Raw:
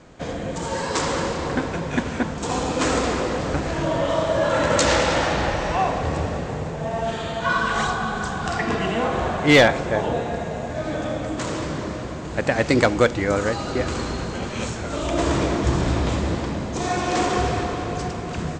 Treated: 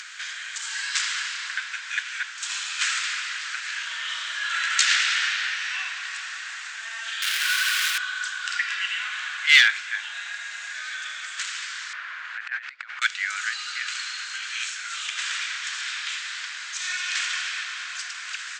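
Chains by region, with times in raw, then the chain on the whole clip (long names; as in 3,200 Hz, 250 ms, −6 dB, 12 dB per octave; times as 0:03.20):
0:07.22–0:07.98: sign of each sample alone + low-shelf EQ 290 Hz +9.5 dB + highs frequency-modulated by the lows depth 0.21 ms
0:11.93–0:13.02: low-pass filter 1,800 Hz + compressor whose output falls as the input rises −25 dBFS, ratio −0.5
whole clip: elliptic high-pass filter 1,500 Hz, stop band 80 dB; dynamic equaliser 2,700 Hz, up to +4 dB, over −39 dBFS, Q 1.1; upward compression, threshold −28 dBFS; level +1.5 dB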